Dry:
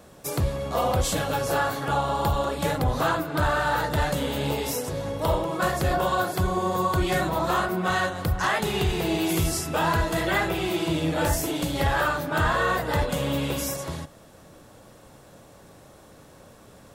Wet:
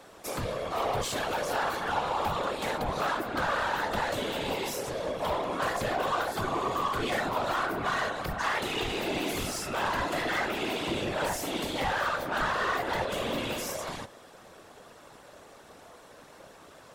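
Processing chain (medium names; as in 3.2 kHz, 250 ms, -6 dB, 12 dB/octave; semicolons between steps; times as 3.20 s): overdrive pedal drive 18 dB, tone 4 kHz, clips at -13.5 dBFS; whisper effect; trim -9 dB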